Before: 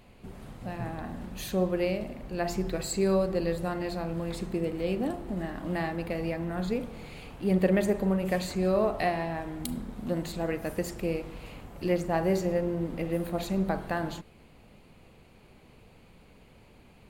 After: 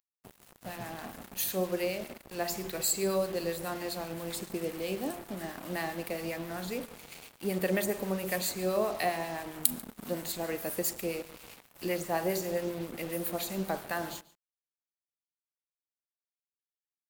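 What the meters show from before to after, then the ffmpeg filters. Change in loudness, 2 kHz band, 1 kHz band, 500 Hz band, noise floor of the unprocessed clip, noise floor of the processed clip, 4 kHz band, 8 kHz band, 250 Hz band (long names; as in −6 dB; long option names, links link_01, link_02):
−3.0 dB, −0.5 dB, −2.5 dB, −4.0 dB, −56 dBFS, below −85 dBFS, +2.5 dB, +7.5 dB, −7.0 dB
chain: -filter_complex "[0:a]aemphasis=mode=production:type=bsi,acrossover=split=1000[link_01][link_02];[link_01]aeval=exprs='val(0)*(1-0.5/2+0.5/2*cos(2*PI*7.5*n/s))':channel_layout=same[link_03];[link_02]aeval=exprs='val(0)*(1-0.5/2-0.5/2*cos(2*PI*7.5*n/s))':channel_layout=same[link_04];[link_03][link_04]amix=inputs=2:normalize=0,acrossover=split=410[link_05][link_06];[link_05]crystalizer=i=5:c=0[link_07];[link_07][link_06]amix=inputs=2:normalize=0,acrusher=bits=6:mix=0:aa=0.5,aecho=1:1:142:0.0891"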